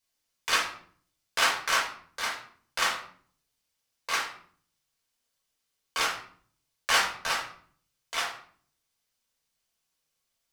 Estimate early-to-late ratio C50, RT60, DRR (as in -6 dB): 7.0 dB, 0.55 s, -4.0 dB